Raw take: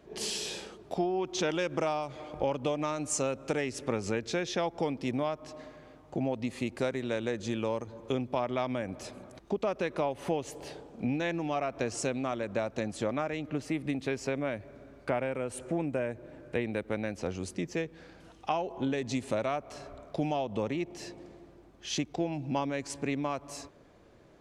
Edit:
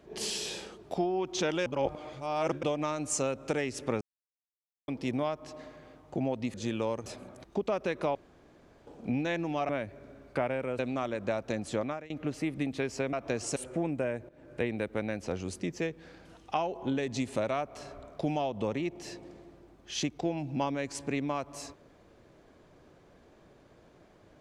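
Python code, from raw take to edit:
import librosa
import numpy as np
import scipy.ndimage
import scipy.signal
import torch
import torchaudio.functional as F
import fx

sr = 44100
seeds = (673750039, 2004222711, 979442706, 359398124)

y = fx.edit(x, sr, fx.reverse_span(start_s=1.66, length_s=0.97),
    fx.silence(start_s=4.01, length_s=0.87),
    fx.cut(start_s=6.54, length_s=0.83),
    fx.cut(start_s=7.89, length_s=1.12),
    fx.room_tone_fill(start_s=10.1, length_s=0.72),
    fx.swap(start_s=11.64, length_s=0.43, other_s=14.41, other_length_s=1.1),
    fx.fade_out_to(start_s=13.09, length_s=0.29, floor_db=-21.5),
    fx.fade_in_from(start_s=16.24, length_s=0.26, floor_db=-17.5), tone=tone)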